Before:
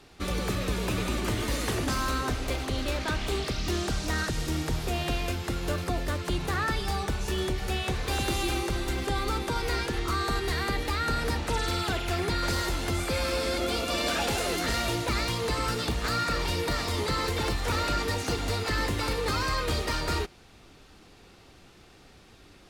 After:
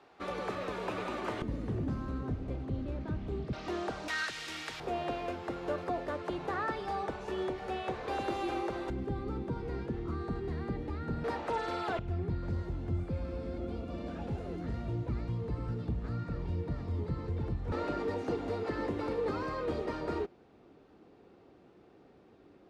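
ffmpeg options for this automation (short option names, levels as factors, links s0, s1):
-af "asetnsamples=n=441:p=0,asendcmd='1.42 bandpass f 150;3.53 bandpass f 700;4.08 bandpass f 2300;4.8 bandpass f 620;8.9 bandpass f 180;11.24 bandpass f 670;11.99 bandpass f 120;17.72 bandpass f 380',bandpass=f=810:t=q:w=0.92:csg=0"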